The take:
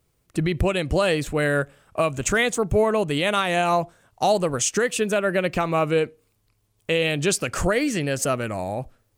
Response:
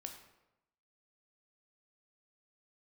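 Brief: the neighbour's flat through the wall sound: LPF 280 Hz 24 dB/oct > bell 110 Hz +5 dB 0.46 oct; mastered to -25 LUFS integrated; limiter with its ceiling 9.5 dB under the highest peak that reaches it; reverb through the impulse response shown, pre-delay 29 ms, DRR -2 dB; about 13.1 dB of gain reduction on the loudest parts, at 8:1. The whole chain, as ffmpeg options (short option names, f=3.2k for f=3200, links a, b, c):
-filter_complex "[0:a]acompressor=threshold=-30dB:ratio=8,alimiter=level_in=2dB:limit=-24dB:level=0:latency=1,volume=-2dB,asplit=2[a][b];[1:a]atrim=start_sample=2205,adelay=29[c];[b][c]afir=irnorm=-1:irlink=0,volume=6dB[d];[a][d]amix=inputs=2:normalize=0,lowpass=f=280:w=0.5412,lowpass=f=280:w=1.3066,equalizer=f=110:t=o:w=0.46:g=5,volume=13dB"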